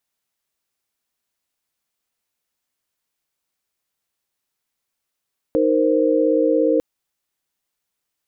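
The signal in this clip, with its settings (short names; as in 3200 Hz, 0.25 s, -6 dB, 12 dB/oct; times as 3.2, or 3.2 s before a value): chord D#4/A#4/C5 sine, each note -18.5 dBFS 1.25 s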